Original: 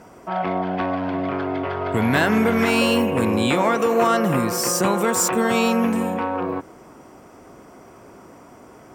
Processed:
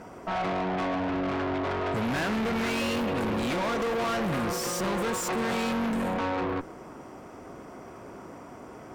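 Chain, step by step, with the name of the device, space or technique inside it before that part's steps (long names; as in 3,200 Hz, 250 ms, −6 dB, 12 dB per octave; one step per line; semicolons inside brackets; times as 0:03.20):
tube preamp driven hard (tube saturation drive 30 dB, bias 0.55; high-shelf EQ 6,100 Hz −8 dB)
level +3.5 dB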